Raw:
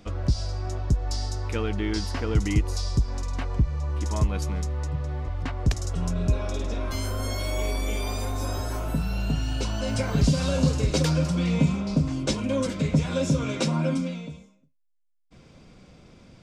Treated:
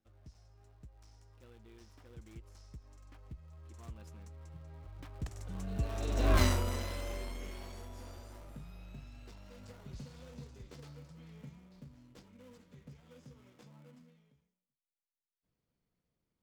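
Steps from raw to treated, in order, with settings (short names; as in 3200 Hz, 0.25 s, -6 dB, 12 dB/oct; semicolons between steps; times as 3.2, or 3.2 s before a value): switching dead time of 0.23 ms; Doppler pass-by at 6.37, 27 m/s, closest 2.5 m; gain +5 dB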